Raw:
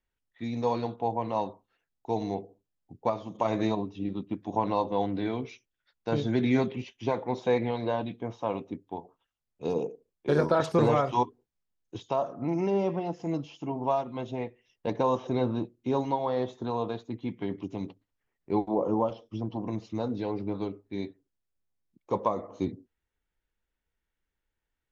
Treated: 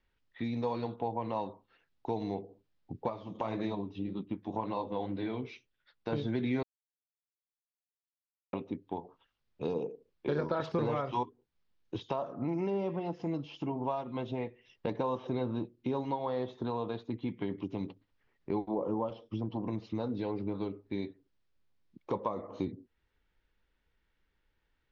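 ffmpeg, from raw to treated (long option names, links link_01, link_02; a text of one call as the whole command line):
ffmpeg -i in.wav -filter_complex "[0:a]asettb=1/sr,asplit=3[link_01][link_02][link_03];[link_01]atrim=end=3.084[link_04];[link_02]atrim=start=3.08:end=6.13,asetpts=PTS-STARTPTS,afade=type=in:duration=0.004:curve=qsin,afade=type=out:start_time=3.046:duration=0.004:curve=qsin,flanger=delay=4.6:depth=8.6:regen=-49:speed=1.8:shape=triangular[link_05];[link_03]atrim=start=6.126[link_06];[link_04][link_05]acrossfade=duration=0.004:curve1=hsin:curve2=qsin[link_07];[link_07][link_06]acrossfade=duration=0.004:curve1=qsin:curve2=hsin,asplit=3[link_08][link_09][link_10];[link_08]atrim=end=6.63,asetpts=PTS-STARTPTS,afade=type=out:start_time=6.626:duration=0.004:curve=hsin[link_11];[link_09]atrim=start=6.63:end=8.53,asetpts=PTS-STARTPTS,volume=0[link_12];[link_10]atrim=start=8.53,asetpts=PTS-STARTPTS,afade=type=in:duration=0.004:curve=hsin[link_13];[link_11][link_12][link_13]concat=n=3:v=0:a=1,lowpass=frequency=4800:width=0.5412,lowpass=frequency=4800:width=1.3066,equalizer=frequency=700:width_type=o:width=0.3:gain=-3.5,acompressor=threshold=-45dB:ratio=2.5,volume=8dB" out.wav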